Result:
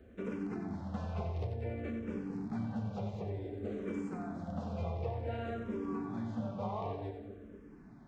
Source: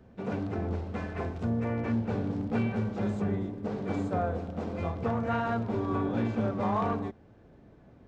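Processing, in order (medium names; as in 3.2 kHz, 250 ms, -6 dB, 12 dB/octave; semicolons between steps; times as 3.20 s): dynamic bell 1.4 kHz, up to -5 dB, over -46 dBFS, Q 1.3; compression, threshold -34 dBFS, peak gain reduction 10 dB; two-band feedback delay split 580 Hz, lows 236 ms, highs 91 ms, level -7 dB; barber-pole phaser -0.55 Hz; trim +1 dB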